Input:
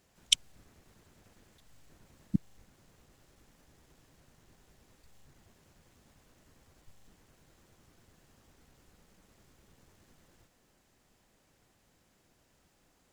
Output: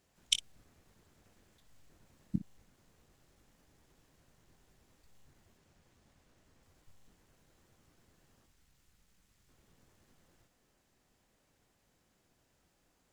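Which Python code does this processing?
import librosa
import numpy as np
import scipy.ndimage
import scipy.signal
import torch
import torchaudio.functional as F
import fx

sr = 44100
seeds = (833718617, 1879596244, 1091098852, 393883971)

y = fx.median_filter(x, sr, points=3, at=(5.57, 6.63))
y = fx.peak_eq(y, sr, hz=450.0, db=-10.0, octaves=2.9, at=(8.46, 9.49))
y = fx.room_early_taps(y, sr, ms=(23, 58), db=(-11.5, -15.5))
y = y * librosa.db_to_amplitude(-5.0)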